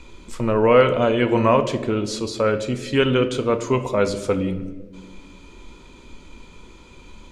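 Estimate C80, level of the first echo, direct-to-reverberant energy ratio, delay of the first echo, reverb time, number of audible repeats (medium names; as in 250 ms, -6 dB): 14.0 dB, no echo, 9.0 dB, no echo, 1.4 s, no echo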